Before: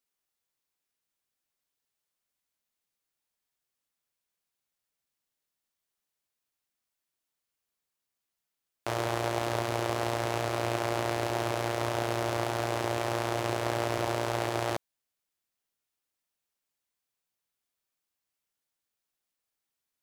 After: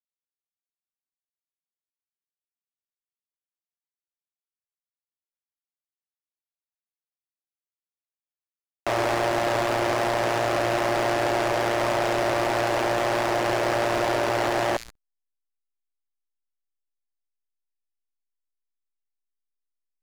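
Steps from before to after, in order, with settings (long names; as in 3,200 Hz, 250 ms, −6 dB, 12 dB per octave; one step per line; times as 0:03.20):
delay with a high-pass on its return 69 ms, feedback 35%, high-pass 5,500 Hz, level −5.5 dB
mid-hump overdrive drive 26 dB, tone 5,400 Hz, clips at −12.5 dBFS
slack as between gear wheels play −26.5 dBFS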